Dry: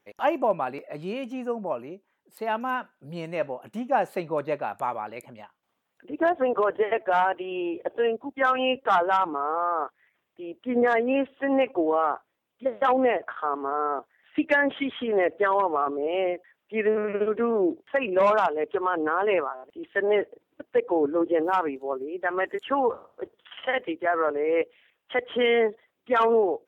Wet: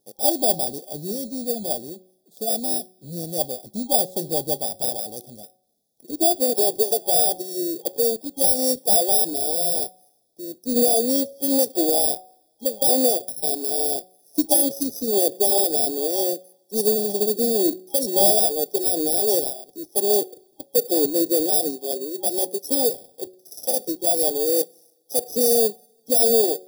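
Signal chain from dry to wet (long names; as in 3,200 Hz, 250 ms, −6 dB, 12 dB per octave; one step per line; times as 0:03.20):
samples in bit-reversed order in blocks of 32 samples
hum removal 184.6 Hz, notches 12
brick-wall band-stop 810–3,300 Hz
coupled-rooms reverb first 0.22 s, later 1.6 s, from −21 dB, DRR 20 dB
level +4 dB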